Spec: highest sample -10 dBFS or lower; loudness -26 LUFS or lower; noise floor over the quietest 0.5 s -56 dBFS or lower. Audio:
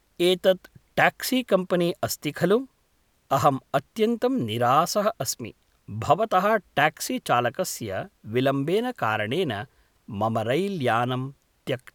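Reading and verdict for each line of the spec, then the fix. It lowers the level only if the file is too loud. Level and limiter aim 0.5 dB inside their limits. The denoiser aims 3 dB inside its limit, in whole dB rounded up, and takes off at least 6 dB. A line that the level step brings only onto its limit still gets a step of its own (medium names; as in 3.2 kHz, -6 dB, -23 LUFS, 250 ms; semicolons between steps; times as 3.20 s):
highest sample -4.5 dBFS: fail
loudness -24.5 LUFS: fail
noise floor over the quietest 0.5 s -66 dBFS: pass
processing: trim -2 dB; peak limiter -10.5 dBFS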